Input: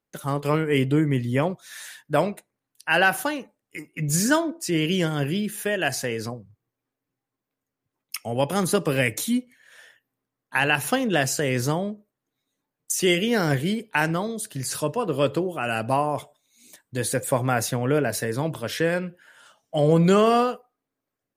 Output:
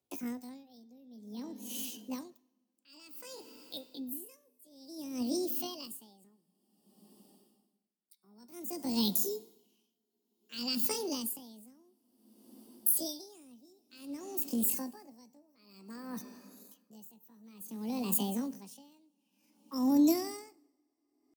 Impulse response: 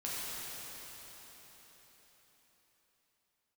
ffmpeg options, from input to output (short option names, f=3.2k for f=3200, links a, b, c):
-filter_complex "[0:a]highpass=47,equalizer=f=860:w=0.62:g=-14,bandreject=f=260:t=h:w=4,bandreject=f=520:t=h:w=4,bandreject=f=780:t=h:w=4,bandreject=f=1.04k:t=h:w=4,bandreject=f=1.3k:t=h:w=4,bandreject=f=1.56k:t=h:w=4,bandreject=f=1.82k:t=h:w=4,bandreject=f=2.08k:t=h:w=4,bandreject=f=2.34k:t=h:w=4,bandreject=f=2.6k:t=h:w=4,bandreject=f=2.86k:t=h:w=4,bandreject=f=3.12k:t=h:w=4,bandreject=f=3.38k:t=h:w=4,bandreject=f=3.64k:t=h:w=4,bandreject=f=3.9k:t=h:w=4,bandreject=f=4.16k:t=h:w=4,bandreject=f=4.42k:t=h:w=4,bandreject=f=4.68k:t=h:w=4,acrossover=split=150|3000[a][b][c];[b]acompressor=threshold=-47dB:ratio=2.5[d];[a][d][c]amix=inputs=3:normalize=0,asetrate=76340,aresample=44100,atempo=0.577676,flanger=delay=2.7:depth=1.1:regen=87:speed=0.24:shape=triangular,asplit=2[e][f];[1:a]atrim=start_sample=2205,lowshelf=f=260:g=7,adelay=101[g];[f][g]afir=irnorm=-1:irlink=0,volume=-23dB[h];[e][h]amix=inputs=2:normalize=0,aeval=exprs='val(0)*pow(10,-30*(0.5-0.5*cos(2*PI*0.55*n/s))/20)':c=same,volume=8dB"